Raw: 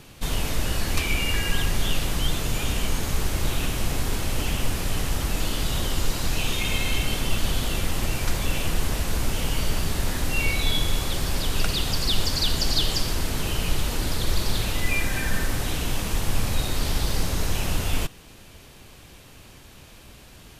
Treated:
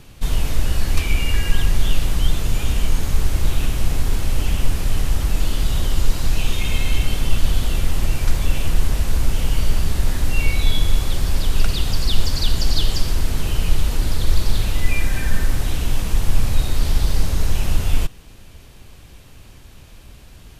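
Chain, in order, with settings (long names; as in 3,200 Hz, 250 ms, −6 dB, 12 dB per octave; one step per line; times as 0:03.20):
low-shelf EQ 100 Hz +11 dB
level −1 dB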